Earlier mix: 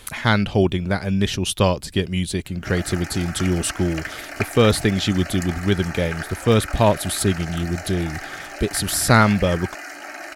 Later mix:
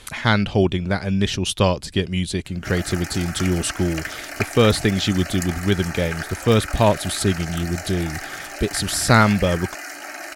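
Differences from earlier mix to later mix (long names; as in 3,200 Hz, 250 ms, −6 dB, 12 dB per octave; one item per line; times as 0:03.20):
speech: add high-frequency loss of the air 60 metres
master: add high-shelf EQ 5,300 Hz +8 dB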